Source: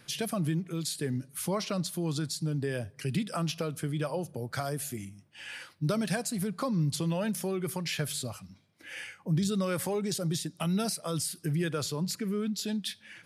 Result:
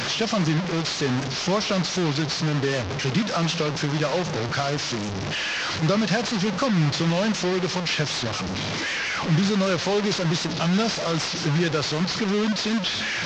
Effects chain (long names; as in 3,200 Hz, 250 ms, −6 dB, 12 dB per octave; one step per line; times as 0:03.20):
linear delta modulator 32 kbit/s, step −29 dBFS
low-shelf EQ 72 Hz −10 dB
wow of a warped record 78 rpm, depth 100 cents
level +8.5 dB